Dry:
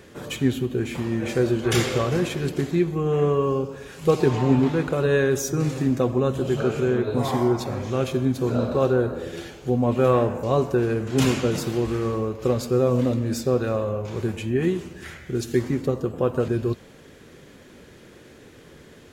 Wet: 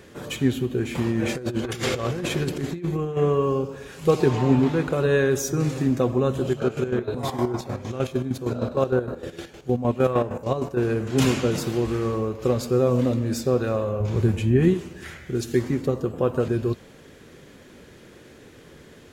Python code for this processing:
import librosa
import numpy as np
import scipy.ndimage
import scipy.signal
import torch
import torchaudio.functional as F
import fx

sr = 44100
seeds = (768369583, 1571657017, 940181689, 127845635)

y = fx.over_compress(x, sr, threshold_db=-25.0, ratio=-0.5, at=(0.95, 3.17))
y = fx.chopper(y, sr, hz=6.5, depth_pct=65, duty_pct=45, at=(6.47, 10.83), fade=0.02)
y = fx.low_shelf(y, sr, hz=190.0, db=11.5, at=(14.0, 14.74))